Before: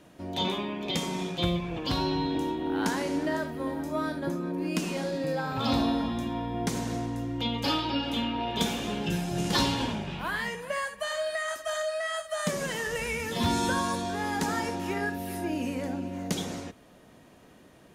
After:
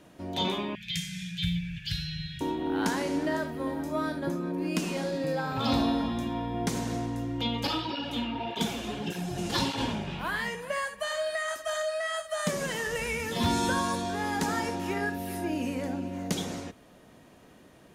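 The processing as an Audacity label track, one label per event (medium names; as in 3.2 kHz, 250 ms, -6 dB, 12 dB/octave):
0.750000	2.410000	Chebyshev band-stop 180–1600 Hz, order 5
7.670000	9.780000	cancelling through-zero flanger nulls at 1.7 Hz, depth 7.7 ms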